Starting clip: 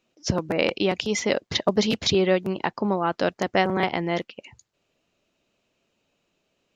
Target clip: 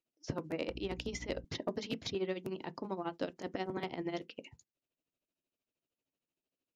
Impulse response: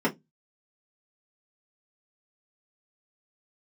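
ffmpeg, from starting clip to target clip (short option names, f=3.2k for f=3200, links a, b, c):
-filter_complex "[0:a]agate=range=-13dB:threshold=-54dB:ratio=16:detection=peak,equalizer=f=1.2k:w=0.45:g=-4,acrossover=split=960|2500[a][b][c];[a]acompressor=threshold=-29dB:ratio=4[d];[b]acompressor=threshold=-41dB:ratio=4[e];[c]acompressor=threshold=-39dB:ratio=4[f];[d][e][f]amix=inputs=3:normalize=0,asettb=1/sr,asplit=3[g][h][i];[g]atrim=end=0.694[j];[h]atrim=start=0.69:end=1.45,asetpts=PTS-STARTPTS,afade=t=in:d=0.004:c=qsin,afade=t=out:st=0.756:d=0.004:c=qsin,aeval=exprs='val(0)+0.0126*(sin(2*PI*60*n/s)+sin(2*PI*2*60*n/s)/2+sin(2*PI*3*60*n/s)/3+sin(2*PI*4*60*n/s)/4+sin(2*PI*5*60*n/s)/5)':c=same[k];[i]atrim=start=1.446[l];[j][k]acrossfade=d=0.004:c1=hsin:c2=qsin[m];[m][l]acrossfade=d=0.004:c1=qsin:c2=hsin,tremolo=f=13:d=0.82,asoftclip=type=tanh:threshold=-17.5dB,asplit=2[n][o];[1:a]atrim=start_sample=2205,atrim=end_sample=3528[p];[o][p]afir=irnorm=-1:irlink=0,volume=-24dB[q];[n][q]amix=inputs=2:normalize=0,volume=-4.5dB"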